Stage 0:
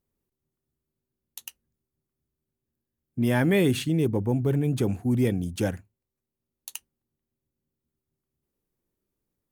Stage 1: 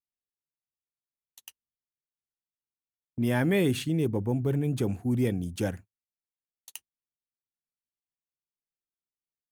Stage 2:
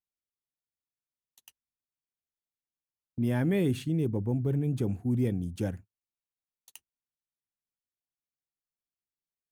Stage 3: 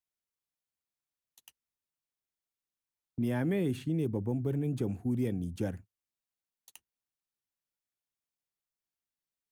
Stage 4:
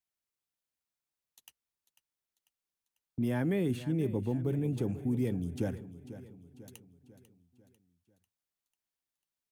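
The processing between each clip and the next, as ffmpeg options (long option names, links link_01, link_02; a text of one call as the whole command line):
ffmpeg -i in.wav -af "agate=range=-24dB:threshold=-40dB:ratio=16:detection=peak,volume=-3dB" out.wav
ffmpeg -i in.wav -af "lowshelf=frequency=440:gain=8.5,volume=-8dB" out.wav
ffmpeg -i in.wav -filter_complex "[0:a]acrossover=split=200|2100[link_01][link_02][link_03];[link_01]acompressor=threshold=-36dB:ratio=4[link_04];[link_02]acompressor=threshold=-29dB:ratio=4[link_05];[link_03]acompressor=threshold=-50dB:ratio=4[link_06];[link_04][link_05][link_06]amix=inputs=3:normalize=0" out.wav
ffmpeg -i in.wav -af "aecho=1:1:495|990|1485|1980|2475:0.188|0.0942|0.0471|0.0235|0.0118" out.wav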